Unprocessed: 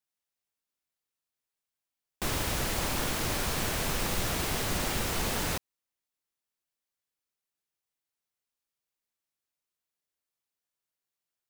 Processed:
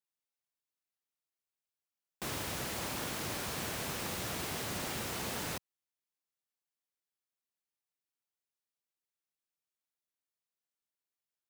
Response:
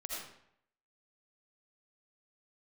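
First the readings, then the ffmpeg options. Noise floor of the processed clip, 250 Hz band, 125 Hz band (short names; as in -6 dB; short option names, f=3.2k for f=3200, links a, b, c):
under -85 dBFS, -6.5 dB, -8.5 dB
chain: -af "highpass=93,volume=-6.5dB"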